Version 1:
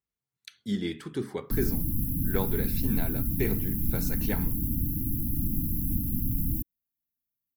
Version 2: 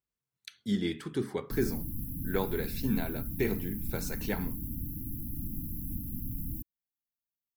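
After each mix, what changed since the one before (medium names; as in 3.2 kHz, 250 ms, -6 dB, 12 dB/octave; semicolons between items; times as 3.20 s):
background -8.5 dB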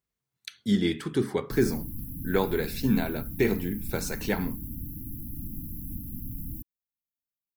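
speech +6.0 dB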